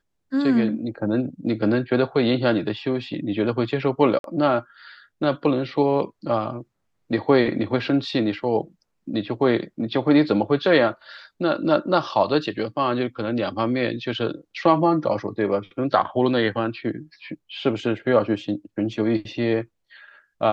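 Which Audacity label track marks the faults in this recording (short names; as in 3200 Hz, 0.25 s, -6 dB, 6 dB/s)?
4.190000	4.240000	gap 52 ms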